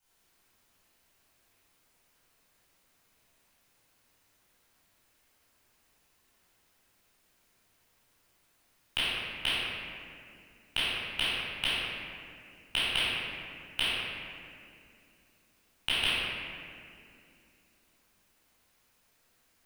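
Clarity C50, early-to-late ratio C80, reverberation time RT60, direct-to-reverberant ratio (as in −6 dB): −5.5 dB, −2.5 dB, 2.4 s, −12.5 dB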